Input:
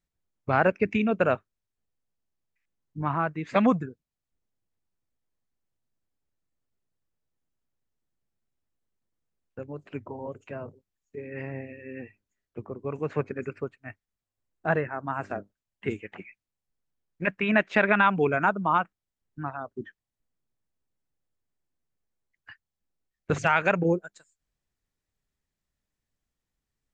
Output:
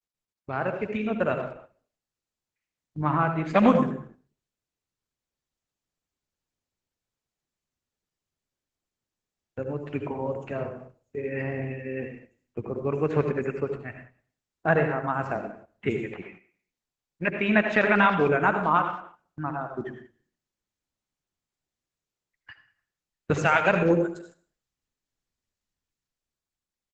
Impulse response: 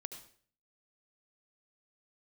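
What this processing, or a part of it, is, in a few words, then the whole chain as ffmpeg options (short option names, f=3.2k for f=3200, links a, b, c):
speakerphone in a meeting room: -filter_complex "[1:a]atrim=start_sample=2205[a];[0:a][a]afir=irnorm=-1:irlink=0,asplit=2[b][c];[c]adelay=190,highpass=300,lowpass=3.4k,asoftclip=type=hard:threshold=-19dB,volume=-19dB[d];[b][d]amix=inputs=2:normalize=0,dynaudnorm=f=130:g=21:m=13.5dB,agate=range=-8dB:threshold=-43dB:ratio=16:detection=peak,volume=-4dB" -ar 48000 -c:a libopus -b:a 12k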